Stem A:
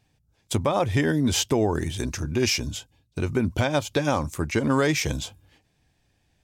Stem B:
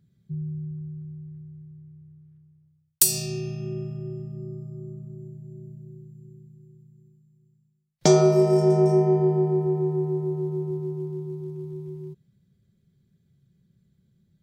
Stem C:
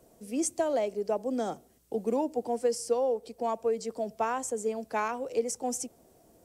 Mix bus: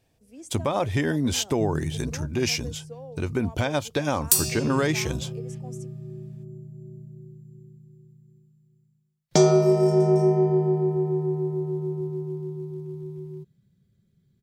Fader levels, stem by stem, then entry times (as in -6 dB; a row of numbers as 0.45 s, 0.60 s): -2.0 dB, -0.5 dB, -14.5 dB; 0.00 s, 1.30 s, 0.00 s